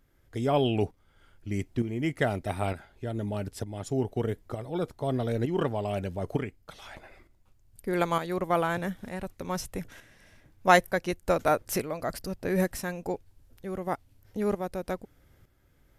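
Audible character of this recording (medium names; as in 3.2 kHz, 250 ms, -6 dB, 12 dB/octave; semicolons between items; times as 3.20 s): tremolo saw up 1.1 Hz, depth 60%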